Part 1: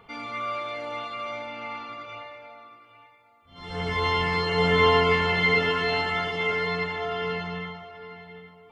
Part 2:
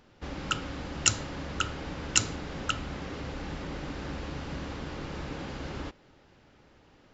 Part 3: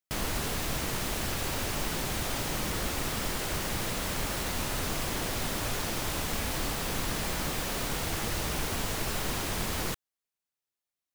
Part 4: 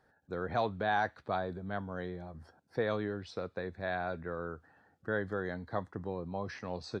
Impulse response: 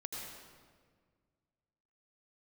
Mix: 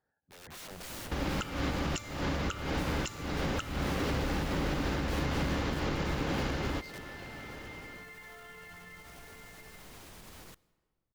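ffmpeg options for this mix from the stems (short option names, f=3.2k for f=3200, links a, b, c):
-filter_complex "[0:a]equalizer=f=1.8k:t=o:w=0.77:g=14,acompressor=threshold=-24dB:ratio=6,adelay=1300,volume=-12.5dB[a];[1:a]acompressor=threshold=-37dB:ratio=6,adelay=900,volume=3dB[b];[2:a]alimiter=level_in=4dB:limit=-24dB:level=0:latency=1:release=251,volume=-4dB,adelay=600,volume=-10.5dB,asplit=2[c][d];[d]volume=-21.5dB[e];[3:a]aeval=exprs='(mod(66.8*val(0)+1,2)-1)/66.8':c=same,volume=-14dB[f];[b][f]amix=inputs=2:normalize=0,dynaudnorm=f=190:g=5:m=10.5dB,alimiter=limit=-22.5dB:level=0:latency=1:release=338,volume=0dB[g];[a][c]amix=inputs=2:normalize=0,alimiter=level_in=17dB:limit=-24dB:level=0:latency=1:release=131,volume=-17dB,volume=0dB[h];[4:a]atrim=start_sample=2205[i];[e][i]afir=irnorm=-1:irlink=0[j];[g][h][j]amix=inputs=3:normalize=0"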